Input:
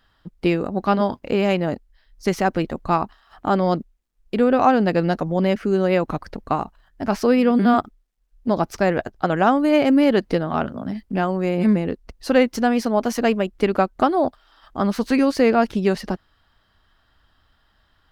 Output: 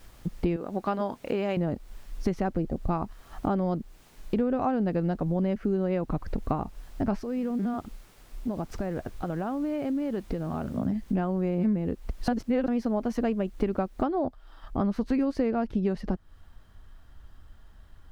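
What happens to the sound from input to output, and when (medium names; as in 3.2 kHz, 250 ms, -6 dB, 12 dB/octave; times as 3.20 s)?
0.56–1.57 s: high-pass 640 Hz 6 dB/octave
2.57–2.90 s: time-frequency box 830–4500 Hz -10 dB
7.21–10.78 s: compression 2.5:1, threshold -37 dBFS
12.28–12.68 s: reverse
14.03 s: noise floor step -52 dB -67 dB
whole clip: tilt EQ -3 dB/octave; compression 4:1, threshold -26 dBFS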